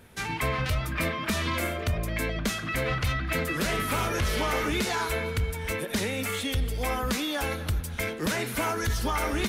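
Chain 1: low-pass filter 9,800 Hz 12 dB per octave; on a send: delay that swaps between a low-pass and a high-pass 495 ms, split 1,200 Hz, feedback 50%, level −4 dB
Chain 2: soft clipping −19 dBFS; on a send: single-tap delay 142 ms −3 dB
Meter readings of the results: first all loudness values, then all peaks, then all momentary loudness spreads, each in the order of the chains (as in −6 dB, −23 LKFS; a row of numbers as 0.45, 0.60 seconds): −28.0, −28.0 LKFS; −15.0, −16.5 dBFS; 3, 3 LU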